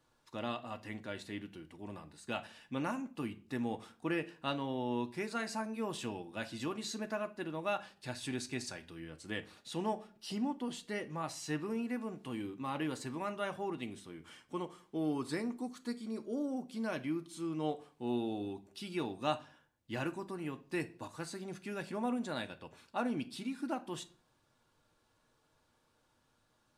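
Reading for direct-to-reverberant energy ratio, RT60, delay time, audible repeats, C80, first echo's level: 6.0 dB, 0.45 s, no echo audible, no echo audible, 22.5 dB, no echo audible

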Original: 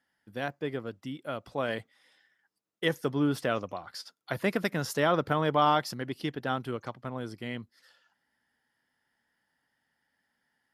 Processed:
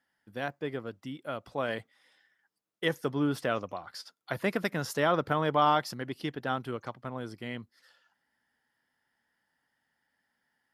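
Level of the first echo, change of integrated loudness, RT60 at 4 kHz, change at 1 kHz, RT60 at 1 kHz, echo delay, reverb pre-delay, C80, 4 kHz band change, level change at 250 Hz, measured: no echo audible, −1.0 dB, no reverb audible, 0.0 dB, no reverb audible, no echo audible, no reverb audible, no reverb audible, −1.5 dB, −1.5 dB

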